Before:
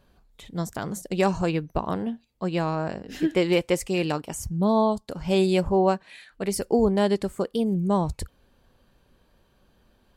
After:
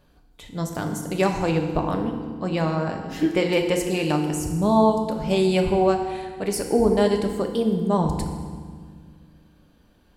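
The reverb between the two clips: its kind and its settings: FDN reverb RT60 1.7 s, low-frequency decay 1.6×, high-frequency decay 0.8×, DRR 3.5 dB; trim +1 dB

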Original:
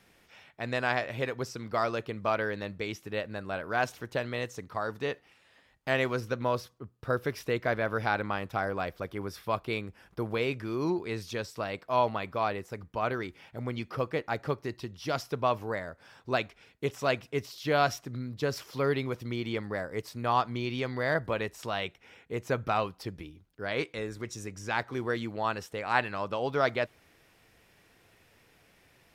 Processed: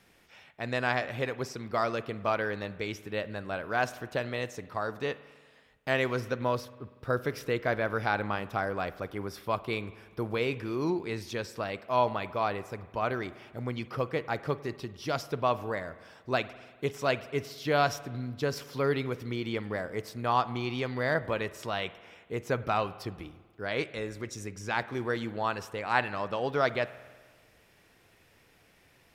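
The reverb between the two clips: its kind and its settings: spring tank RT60 1.5 s, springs 48 ms, chirp 65 ms, DRR 15.5 dB

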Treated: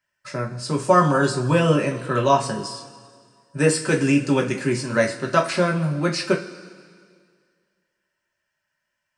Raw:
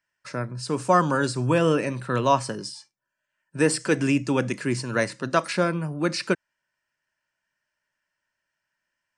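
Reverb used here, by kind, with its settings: two-slope reverb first 0.24 s, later 2 s, from -18 dB, DRR 0 dB

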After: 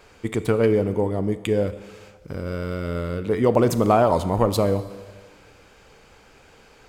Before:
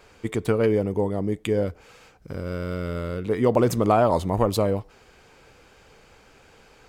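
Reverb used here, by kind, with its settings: Schroeder reverb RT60 1.5 s, combs from 27 ms, DRR 12.5 dB; trim +1.5 dB

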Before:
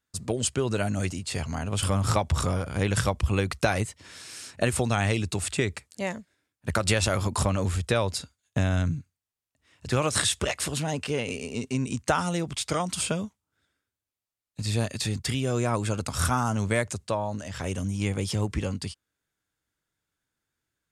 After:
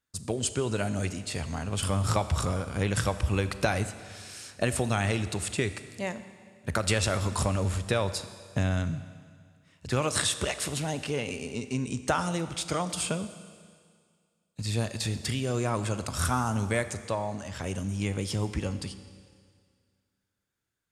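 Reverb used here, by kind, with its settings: Schroeder reverb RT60 2 s, combs from 28 ms, DRR 11.5 dB; trim -2.5 dB

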